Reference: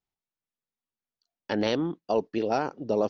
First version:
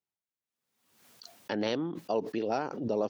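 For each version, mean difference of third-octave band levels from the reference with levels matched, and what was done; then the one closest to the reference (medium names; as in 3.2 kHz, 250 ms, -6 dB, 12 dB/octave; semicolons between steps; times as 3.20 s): 2.0 dB: high-pass 110 Hz; swell ahead of each attack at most 62 dB/s; trim -5 dB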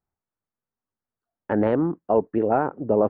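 4.0 dB: low-pass 1.6 kHz 24 dB/octave; peaking EQ 79 Hz +6 dB 0.89 oct; trim +5.5 dB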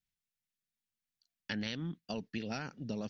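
5.5 dB: high-order bell 600 Hz -15.5 dB 2.3 oct; compression, threshold -35 dBFS, peak gain reduction 8.5 dB; trim +1 dB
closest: first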